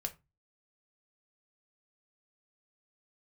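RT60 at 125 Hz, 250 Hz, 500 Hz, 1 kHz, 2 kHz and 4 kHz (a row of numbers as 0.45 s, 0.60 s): 0.45 s, 0.30 s, 0.25 s, 0.25 s, 0.20 s, 0.15 s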